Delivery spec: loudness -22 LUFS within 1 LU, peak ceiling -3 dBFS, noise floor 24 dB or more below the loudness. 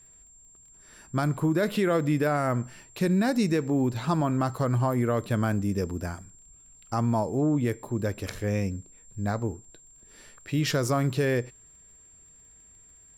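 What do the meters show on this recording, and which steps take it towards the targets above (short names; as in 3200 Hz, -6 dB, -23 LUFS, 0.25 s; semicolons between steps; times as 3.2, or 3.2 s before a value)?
ticks 26/s; steady tone 7400 Hz; tone level -52 dBFS; loudness -27.0 LUFS; peak -15.5 dBFS; loudness target -22.0 LUFS
-> de-click; notch 7400 Hz, Q 30; gain +5 dB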